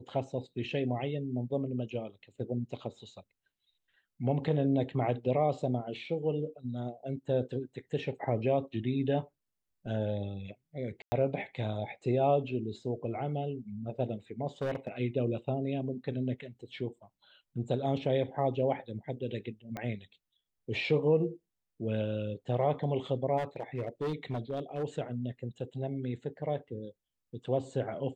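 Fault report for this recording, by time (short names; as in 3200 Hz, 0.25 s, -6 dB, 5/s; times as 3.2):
11.02–11.12 gap 0.1 s
14.62–14.89 clipped -28.5 dBFS
19.77 pop -23 dBFS
23.37–24.84 clipped -29.5 dBFS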